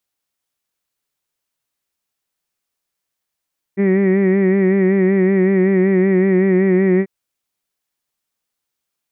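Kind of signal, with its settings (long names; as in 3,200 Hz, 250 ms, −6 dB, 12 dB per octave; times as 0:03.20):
vowel from formants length 3.29 s, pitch 193 Hz, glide −0.5 semitones, vibrato depth 0.6 semitones, F1 330 Hz, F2 1,900 Hz, F3 2,300 Hz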